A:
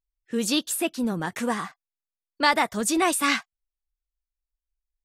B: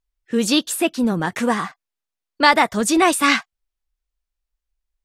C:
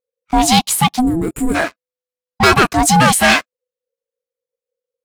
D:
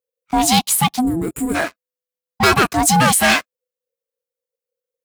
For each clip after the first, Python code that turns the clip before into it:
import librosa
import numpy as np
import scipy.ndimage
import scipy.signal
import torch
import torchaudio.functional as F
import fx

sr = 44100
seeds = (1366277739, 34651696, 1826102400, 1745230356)

y1 = fx.high_shelf(x, sr, hz=7800.0, db=-7.0)
y1 = y1 * librosa.db_to_amplitude(7.0)
y2 = fx.leveller(y1, sr, passes=3)
y2 = y2 * np.sin(2.0 * np.pi * 500.0 * np.arange(len(y2)) / sr)
y2 = fx.spec_box(y2, sr, start_s=1.0, length_s=0.55, low_hz=530.0, high_hz=6900.0, gain_db=-19)
y3 = scipy.signal.sosfilt(scipy.signal.butter(2, 51.0, 'highpass', fs=sr, output='sos'), y2)
y3 = fx.high_shelf(y3, sr, hz=11000.0, db=9.0)
y3 = y3 * librosa.db_to_amplitude(-3.0)